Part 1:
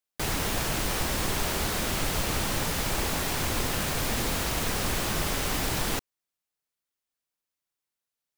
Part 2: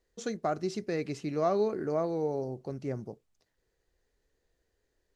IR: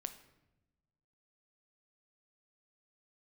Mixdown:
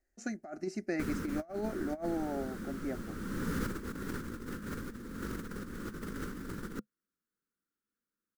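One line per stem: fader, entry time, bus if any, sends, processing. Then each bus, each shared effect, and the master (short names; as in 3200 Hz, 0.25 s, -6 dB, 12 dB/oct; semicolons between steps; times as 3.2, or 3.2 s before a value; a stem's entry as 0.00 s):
-4.0 dB, 0.80 s, no send, EQ curve 140 Hz 0 dB, 210 Hz +12 dB, 500 Hz +1 dB, 700 Hz -20 dB, 1400 Hz +5 dB, 2500 Hz -13 dB, 7100 Hz -10 dB; auto duck -16 dB, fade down 1.70 s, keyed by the second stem
+2.5 dB, 0.00 s, no send, fixed phaser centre 690 Hz, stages 8; upward expander 1.5:1, over -45 dBFS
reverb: off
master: negative-ratio compressor -36 dBFS, ratio -0.5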